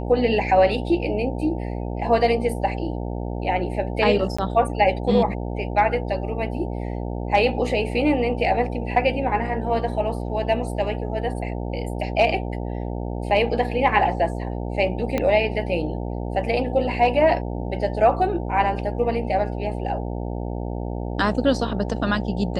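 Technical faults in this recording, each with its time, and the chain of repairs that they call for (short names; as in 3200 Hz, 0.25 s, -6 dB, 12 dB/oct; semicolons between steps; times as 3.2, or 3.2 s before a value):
buzz 60 Hz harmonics 15 -28 dBFS
4.37–4.38 gap 15 ms
15.18 pop -10 dBFS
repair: de-click; de-hum 60 Hz, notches 15; interpolate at 4.37, 15 ms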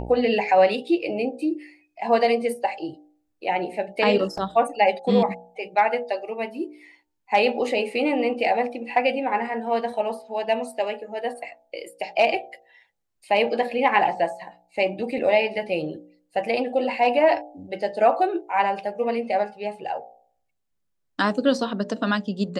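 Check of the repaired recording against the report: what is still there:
15.18 pop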